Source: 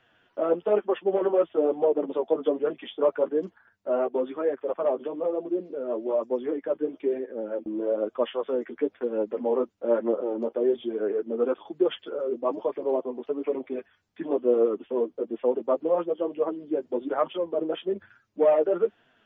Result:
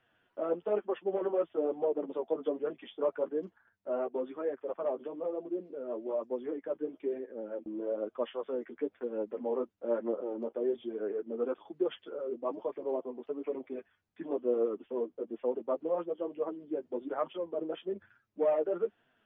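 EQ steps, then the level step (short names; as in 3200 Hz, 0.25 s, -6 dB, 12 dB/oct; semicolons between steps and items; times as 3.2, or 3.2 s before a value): tone controls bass +1 dB, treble -7 dB; -8.0 dB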